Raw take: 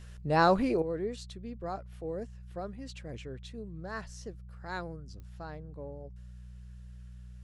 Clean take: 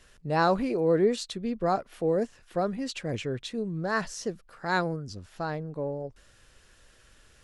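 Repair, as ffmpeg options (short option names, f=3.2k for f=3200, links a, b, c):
-af "adeclick=t=4,bandreject=f=60.9:t=h:w=4,bandreject=f=121.8:t=h:w=4,bandreject=f=182.7:t=h:w=4,asetnsamples=n=441:p=0,asendcmd='0.82 volume volume 11.5dB',volume=0dB"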